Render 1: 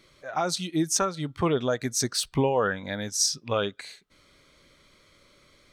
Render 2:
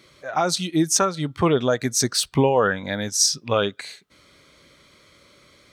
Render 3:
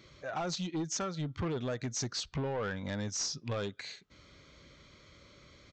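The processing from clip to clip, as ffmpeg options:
ffmpeg -i in.wav -af "highpass=62,volume=5.5dB" out.wav
ffmpeg -i in.wav -af "lowshelf=frequency=140:gain=11.5,acompressor=threshold=-28dB:ratio=2,aresample=16000,asoftclip=type=tanh:threshold=-24dB,aresample=44100,volume=-5.5dB" out.wav

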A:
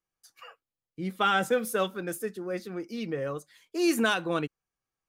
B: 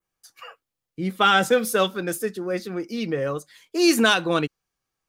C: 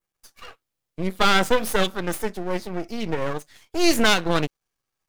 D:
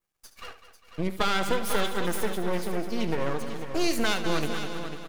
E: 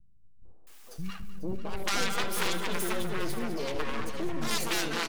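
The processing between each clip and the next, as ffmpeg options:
ffmpeg -i in.wav -af "adynamicequalizer=threshold=0.00398:dfrequency=4600:dqfactor=1.2:tfrequency=4600:tqfactor=1.2:attack=5:release=100:ratio=0.375:range=3:mode=boostabove:tftype=bell,volume=6.5dB" out.wav
ffmpeg -i in.wav -af "aeval=exprs='max(val(0),0)':channel_layout=same,volume=3.5dB" out.wav
ffmpeg -i in.wav -filter_complex "[0:a]asplit=2[link_01][link_02];[link_02]aecho=0:1:201|402|603|804|1005:0.237|0.116|0.0569|0.0279|0.0137[link_03];[link_01][link_03]amix=inputs=2:normalize=0,acompressor=threshold=-23dB:ratio=3,asplit=2[link_04][link_05];[link_05]aecho=0:1:73|496:0.237|0.335[link_06];[link_04][link_06]amix=inputs=2:normalize=0" out.wav
ffmpeg -i in.wav -filter_complex "[0:a]aeval=exprs='val(0)+0.5*0.0266*sgn(val(0))':channel_layout=same,aeval=exprs='0.376*(cos(1*acos(clip(val(0)/0.376,-1,1)))-cos(1*PI/2))+0.0596*(cos(7*acos(clip(val(0)/0.376,-1,1)))-cos(7*PI/2))+0.15*(cos(8*acos(clip(val(0)/0.376,-1,1)))-cos(8*PI/2))':channel_layout=same,acrossover=split=190|720[link_01][link_02][link_03];[link_02]adelay=450[link_04];[link_03]adelay=670[link_05];[link_01][link_04][link_05]amix=inputs=3:normalize=0,volume=-7dB" out.wav

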